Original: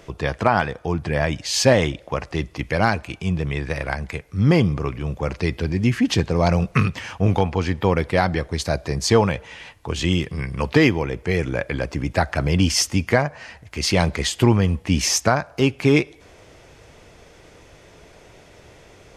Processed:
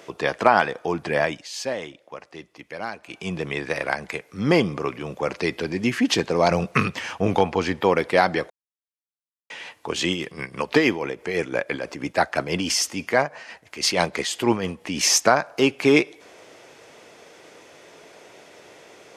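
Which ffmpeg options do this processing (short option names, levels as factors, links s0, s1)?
-filter_complex "[0:a]asettb=1/sr,asplit=3[s0][s1][s2];[s0]atrim=end=6.514[s3];[s1]atrim=start=6.51:end=7.8,asetpts=PTS-STARTPTS,afade=t=in:d=0.004:c=qsin,afade=t=out:st=1.286:d=0.004:c=qsin,lowshelf=f=100:g=10.5[s4];[s2]atrim=start=7.796[s5];[s3][s4]acrossfade=d=0.004:c1=hsin:c2=qsin[s6];[s6][s5]acrossfade=d=0.004:c1=qsin:c2=hsin,asettb=1/sr,asplit=3[s7][s8][s9];[s7]atrim=end=10.094[s10];[s8]atrim=start=10.09:end=15.01,asetpts=PTS-STARTPTS,afade=t=in:d=0.004:c=qsin,afade=t=out:st=4.916:d=0.004:c=qsin,tremolo=f=6.1:d=0.54[s11];[s9]atrim=start=15.006[s12];[s10][s11]acrossfade=d=0.004:c1=hsin:c2=qsin[s13];[s13][s12]acrossfade=d=0.004:c1=qsin:c2=hsin,asplit=5[s14][s15][s16][s17][s18];[s14]atrim=end=1.49,asetpts=PTS-STARTPTS,afade=t=out:st=1.2:d=0.29:silence=0.211349[s19];[s15]atrim=start=1.49:end=3,asetpts=PTS-STARTPTS,volume=0.211[s20];[s16]atrim=start=3:end=8.5,asetpts=PTS-STARTPTS,afade=t=in:d=0.29:silence=0.211349,afade=t=out:st=5.496:d=0.004:c=hsin[s21];[s17]atrim=start=8.5:end=9.5,asetpts=PTS-STARTPTS,volume=0[s22];[s18]atrim=start=9.5,asetpts=PTS-STARTPTS,afade=t=in:d=0.004:c=hsin[s23];[s19][s20][s21][s22][s23]concat=n=5:v=0:a=1,highpass=280,volume=1.26"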